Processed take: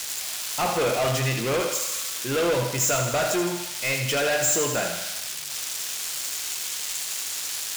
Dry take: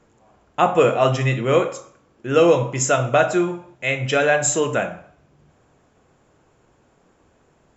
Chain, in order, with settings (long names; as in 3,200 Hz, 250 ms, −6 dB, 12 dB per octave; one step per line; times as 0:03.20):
spike at every zero crossing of −13 dBFS
parametric band 4,600 Hz +5 dB 2.3 octaves
mains-hum notches 50/100/150/200 Hz
soft clipping −18 dBFS, distortion −8 dB
feedback echo with a high-pass in the loop 81 ms, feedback 66%, high-pass 430 Hz, level −7 dB
level −2.5 dB